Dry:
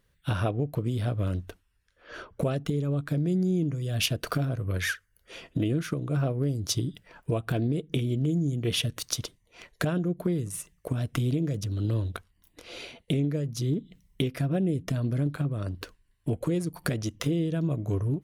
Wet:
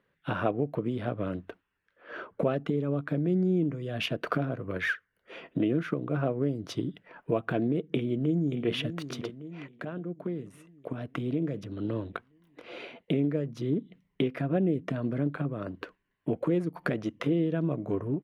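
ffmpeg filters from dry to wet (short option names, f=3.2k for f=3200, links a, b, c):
-filter_complex "[0:a]asplit=2[a][b];[b]afade=t=in:st=7.91:d=0.01,afade=t=out:st=8.72:d=0.01,aecho=0:1:580|1160|1740|2320|2900|3480|4060:0.281838|0.169103|0.101462|0.0608771|0.0365262|0.0219157|0.0131494[c];[a][c]amix=inputs=2:normalize=0,asplit=2[d][e];[d]atrim=end=9.68,asetpts=PTS-STARTPTS,afade=t=out:st=9.676:d=0.004:c=hsin:silence=0.251189[f];[e]atrim=start=9.68,asetpts=PTS-STARTPTS,afade=t=in:d=2.35:silence=0.251189[g];[f][g]concat=n=2:v=0:a=1,acrossover=split=160 2800:gain=0.0708 1 0.0708[h][i][j];[h][i][j]amix=inputs=3:normalize=0,volume=2.5dB"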